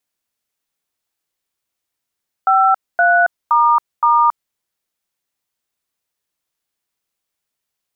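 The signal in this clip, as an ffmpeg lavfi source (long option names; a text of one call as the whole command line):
ffmpeg -f lavfi -i "aevalsrc='0.251*clip(min(mod(t,0.519),0.275-mod(t,0.519))/0.002,0,1)*(eq(floor(t/0.519),0)*(sin(2*PI*770*mod(t,0.519))+sin(2*PI*1336*mod(t,0.519)))+eq(floor(t/0.519),1)*(sin(2*PI*697*mod(t,0.519))+sin(2*PI*1477*mod(t,0.519)))+eq(floor(t/0.519),2)*(sin(2*PI*941*mod(t,0.519))+sin(2*PI*1209*mod(t,0.519)))+eq(floor(t/0.519),3)*(sin(2*PI*941*mod(t,0.519))+sin(2*PI*1209*mod(t,0.519))))':duration=2.076:sample_rate=44100" out.wav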